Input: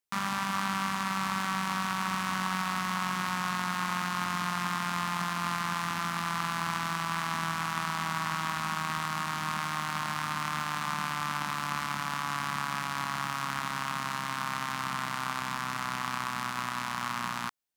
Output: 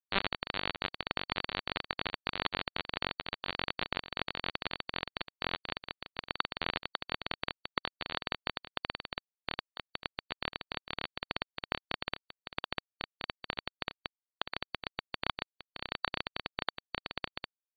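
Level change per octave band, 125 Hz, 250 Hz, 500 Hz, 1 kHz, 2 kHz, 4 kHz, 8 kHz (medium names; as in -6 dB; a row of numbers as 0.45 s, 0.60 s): -11.5 dB, -10.0 dB, +2.5 dB, -11.5 dB, -6.0 dB, -0.5 dB, under -40 dB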